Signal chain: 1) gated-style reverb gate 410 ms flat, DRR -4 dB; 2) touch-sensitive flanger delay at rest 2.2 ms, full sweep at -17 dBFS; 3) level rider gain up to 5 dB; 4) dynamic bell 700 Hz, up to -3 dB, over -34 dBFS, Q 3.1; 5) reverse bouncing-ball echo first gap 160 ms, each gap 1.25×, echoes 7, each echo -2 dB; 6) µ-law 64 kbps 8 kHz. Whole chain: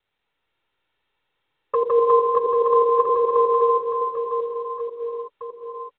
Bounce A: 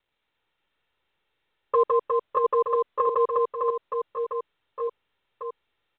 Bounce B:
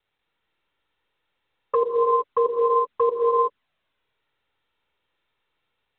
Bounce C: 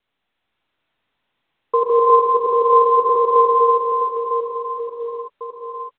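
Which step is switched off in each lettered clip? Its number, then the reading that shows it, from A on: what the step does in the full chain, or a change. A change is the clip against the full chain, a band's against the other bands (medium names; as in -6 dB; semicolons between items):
1, loudness change -5.5 LU; 5, momentary loudness spread change -11 LU; 2, loudness change +4.0 LU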